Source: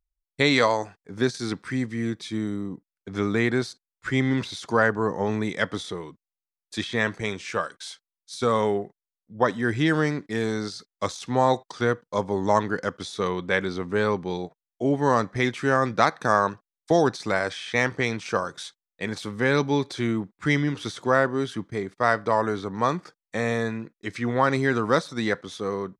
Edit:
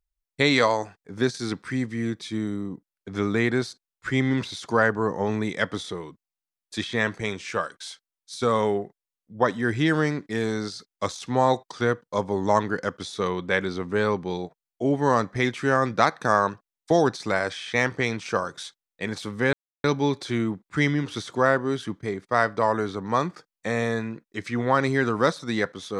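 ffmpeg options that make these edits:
ffmpeg -i in.wav -filter_complex "[0:a]asplit=2[link_01][link_02];[link_01]atrim=end=19.53,asetpts=PTS-STARTPTS,afade=type=out:start_time=19.526:duration=0.004:curve=hsin,apad=pad_dur=0.31[link_03];[link_02]atrim=start=19.53,asetpts=PTS-STARTPTS,afade=type=in:duration=0.004:curve=hsin[link_04];[link_03][link_04]concat=n=2:v=0:a=1" out.wav

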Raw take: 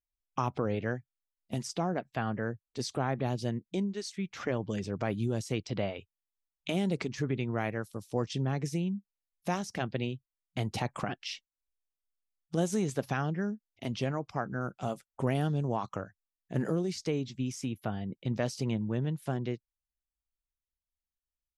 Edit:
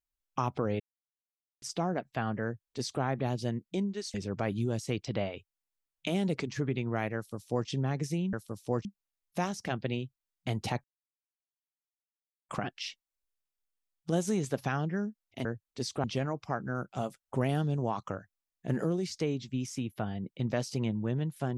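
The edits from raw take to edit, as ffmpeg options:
ffmpeg -i in.wav -filter_complex "[0:a]asplit=9[link_01][link_02][link_03][link_04][link_05][link_06][link_07][link_08][link_09];[link_01]atrim=end=0.8,asetpts=PTS-STARTPTS,afade=type=out:start_time=0.796:duration=0.004:curve=hsin[link_10];[link_02]atrim=start=0.8:end=1.62,asetpts=PTS-STARTPTS,volume=0[link_11];[link_03]atrim=start=1.62:end=4.142,asetpts=PTS-STARTPTS,afade=type=in:duration=0.004:curve=hsin[link_12];[link_04]atrim=start=4.758:end=8.952[link_13];[link_05]atrim=start=7.778:end=8.302[link_14];[link_06]atrim=start=8.948:end=10.94,asetpts=PTS-STARTPTS,afade=type=out:start_time=1.988:duration=0.004:curve=hsin,apad=pad_dur=1.65[link_15];[link_07]atrim=start=10.94:end=13.902,asetpts=PTS-STARTPTS,afade=type=in:duration=0.004:curve=hsin[link_16];[link_08]atrim=start=2.438:end=3.032[link_17];[link_09]atrim=start=13.898[link_18];[link_10][link_11][link_12]concat=n=3:v=0:a=1[link_19];[link_19][link_13]acrossfade=duration=0.004:curve1=hsin:curve2=hsin[link_20];[link_20][link_14]acrossfade=duration=0.004:curve1=hsin:curve2=hsin[link_21];[link_15][link_16]concat=n=2:v=0:a=1[link_22];[link_21][link_22]acrossfade=duration=0.004:curve1=hsin:curve2=hsin[link_23];[link_23][link_17]acrossfade=duration=0.004:curve1=hsin:curve2=hsin[link_24];[link_24][link_18]acrossfade=duration=0.004:curve1=hsin:curve2=hsin" out.wav

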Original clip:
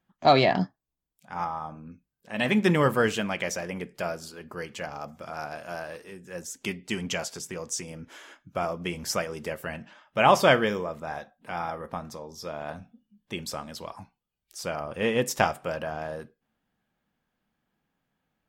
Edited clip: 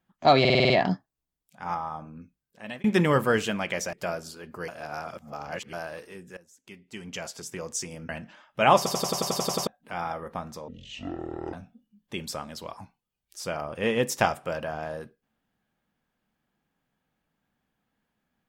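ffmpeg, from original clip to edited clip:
ffmpeg -i in.wav -filter_complex "[0:a]asplit=25[link_01][link_02][link_03][link_04][link_05][link_06][link_07][link_08][link_09][link_10][link_11][link_12][link_13][link_14][link_15][link_16][link_17][link_18][link_19][link_20][link_21][link_22][link_23][link_24][link_25];[link_01]atrim=end=0.452[link_26];[link_02]atrim=start=0.398:end=0.452[link_27];[link_03]atrim=start=0.398:end=0.452[link_28];[link_04]atrim=start=0.398:end=0.452[link_29];[link_05]atrim=start=0.398:end=0.452[link_30];[link_06]atrim=start=0.398:end=0.452[link_31];[link_07]atrim=start=0.398:end=2.54,asetpts=PTS-STARTPTS,afade=type=out:start_time=1.492:duration=0.65:curve=qsin[link_32];[link_08]atrim=start=2.54:end=3.632,asetpts=PTS-STARTPTS,afade=type=in:duration=0.004:curve=hsin[link_33];[link_09]atrim=start=3.898:end=4.652[link_34];[link_10]atrim=start=4.648:end=5.702,asetpts=PTS-STARTPTS,areverse[link_35];[link_11]atrim=start=5.698:end=6.34,asetpts=PTS-STARTPTS,afade=type=out:start_time=0.638:duration=0.004:curve=hsin:silence=0.1[link_36];[link_12]atrim=start=6.34:end=8.062,asetpts=PTS-STARTPTS,afade=type=in:duration=1.2:curve=qua:silence=0.1[link_37];[link_13]atrim=start=9.668:end=10.442[link_38];[link_14]atrim=start=10.348:end=10.442[link_39];[link_15]atrim=start=10.348:end=10.442[link_40];[link_16]atrim=start=10.348:end=10.442[link_41];[link_17]atrim=start=10.348:end=10.442[link_42];[link_18]atrim=start=10.348:end=10.442[link_43];[link_19]atrim=start=10.348:end=10.442[link_44];[link_20]atrim=start=10.348:end=10.442[link_45];[link_21]atrim=start=10.348:end=10.442[link_46];[link_22]atrim=start=10.348:end=10.442[link_47];[link_23]atrim=start=11.248:end=12.264[link_48];[link_24]atrim=start=12.26:end=12.72,asetpts=PTS-STARTPTS,asetrate=23814,aresample=44100[link_49];[link_25]atrim=start=12.716[link_50];[link_26][link_27]acrossfade=duration=0.004:curve1=hsin:curve2=hsin[link_51];[link_51][link_28]acrossfade=duration=0.004:curve1=hsin:curve2=hsin[link_52];[link_52][link_29]acrossfade=duration=0.004:curve1=hsin:curve2=hsin[link_53];[link_53][link_30]acrossfade=duration=0.004:curve1=hsin:curve2=hsin[link_54];[link_54][link_31]acrossfade=duration=0.004:curve1=hsin:curve2=hsin[link_55];[link_32][link_33]concat=n=2:v=0:a=1[link_56];[link_55][link_56]acrossfade=duration=0.004:curve1=hsin:curve2=hsin[link_57];[link_57][link_34]acrossfade=duration=0.004:curve1=hsin:curve2=hsin[link_58];[link_58][link_35]acrossfade=duration=0.004:curve1=hsin:curve2=hsin[link_59];[link_36][link_37]concat=n=2:v=0:a=1[link_60];[link_59][link_60]acrossfade=duration=0.004:curve1=hsin:curve2=hsin[link_61];[link_61][link_38]acrossfade=duration=0.004:curve1=hsin:curve2=hsin[link_62];[link_62][link_39]acrossfade=duration=0.004:curve1=hsin:curve2=hsin[link_63];[link_63][link_40]acrossfade=duration=0.004:curve1=hsin:curve2=hsin[link_64];[link_64][link_41]acrossfade=duration=0.004:curve1=hsin:curve2=hsin[link_65];[link_65][link_42]acrossfade=duration=0.004:curve1=hsin:curve2=hsin[link_66];[link_66][link_43]acrossfade=duration=0.004:curve1=hsin:curve2=hsin[link_67];[link_67][link_44]acrossfade=duration=0.004:curve1=hsin:curve2=hsin[link_68];[link_68][link_45]acrossfade=duration=0.004:curve1=hsin:curve2=hsin[link_69];[link_69][link_46]acrossfade=duration=0.004:curve1=hsin:curve2=hsin[link_70];[link_70][link_47]acrossfade=duration=0.004:curve1=hsin:curve2=hsin[link_71];[link_71][link_48]acrossfade=duration=0.004:curve1=hsin:curve2=hsin[link_72];[link_72][link_49]acrossfade=duration=0.004:curve1=hsin:curve2=hsin[link_73];[link_73][link_50]acrossfade=duration=0.004:curve1=hsin:curve2=hsin" out.wav

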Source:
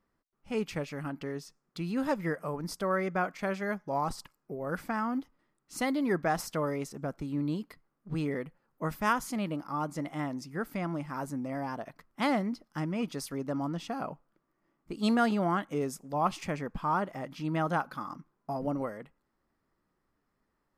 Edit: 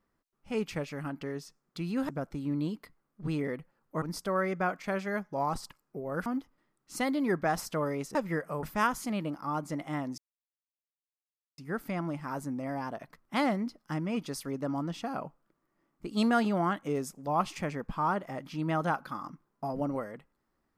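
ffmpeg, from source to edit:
ffmpeg -i in.wav -filter_complex "[0:a]asplit=7[link_01][link_02][link_03][link_04][link_05][link_06][link_07];[link_01]atrim=end=2.092[link_08];[link_02]atrim=start=6.958:end=8.892[link_09];[link_03]atrim=start=2.568:end=4.812[link_10];[link_04]atrim=start=5.068:end=6.962[link_11];[link_05]atrim=start=2.088:end=2.572[link_12];[link_06]atrim=start=8.888:end=10.44,asetpts=PTS-STARTPTS,afade=type=out:start_time=1.548:duration=0.004:curve=hsin,apad=pad_dur=1.4[link_13];[link_07]atrim=start=10.44,asetpts=PTS-STARTPTS,afade=type=in:duration=0.004:curve=hsin[link_14];[link_08][link_09]acrossfade=duration=0.004:curve1=hsin:curve2=hsin[link_15];[link_15][link_10]acrossfade=duration=0.004:curve1=hsin:curve2=hsin[link_16];[link_16][link_11]acrossfade=duration=0.004:curve1=hsin:curve2=hsin[link_17];[link_17][link_12]acrossfade=duration=0.004:curve1=hsin:curve2=hsin[link_18];[link_13][link_14]concat=n=2:v=0:a=1[link_19];[link_18][link_19]acrossfade=duration=0.004:curve1=hsin:curve2=hsin" out.wav

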